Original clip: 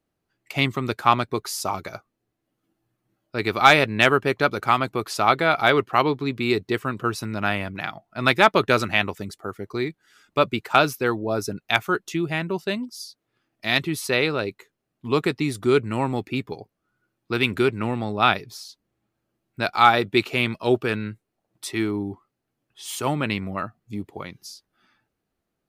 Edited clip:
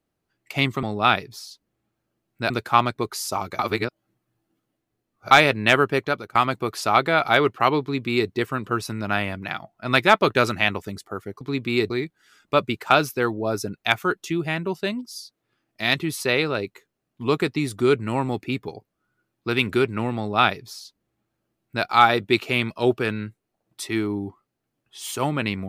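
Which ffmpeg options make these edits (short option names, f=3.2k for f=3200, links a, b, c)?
-filter_complex "[0:a]asplit=8[a][b][c][d][e][f][g][h];[a]atrim=end=0.832[i];[b]atrim=start=18.008:end=19.682[j];[c]atrim=start=0.828:end=1.922[k];[d]atrim=start=1.918:end=3.642,asetpts=PTS-STARTPTS,areverse[l];[e]atrim=start=3.638:end=4.68,asetpts=PTS-STARTPTS,afade=t=out:st=0.662:d=0.38:silence=0.0891251[m];[f]atrim=start=4.68:end=9.742,asetpts=PTS-STARTPTS,afade=t=in:d=0.004:c=hsin:silence=0.0891251[n];[g]atrim=start=6.138:end=6.632[o];[h]atrim=start=9.738[p];[i][j]acrossfade=d=0.004:c1=hsin:c2=hsin[q];[q][k]acrossfade=d=0.004:c1=hsin:c2=hsin[r];[r][l]acrossfade=d=0.004:c1=hsin:c2=hsin[s];[m][n]concat=n=2:v=0:a=1[t];[s][t]acrossfade=d=0.004:c1=hsin:c2=hsin[u];[u][o]acrossfade=d=0.004:c1=hsin:c2=hsin[v];[v][p]acrossfade=d=0.004:c1=hsin:c2=hsin"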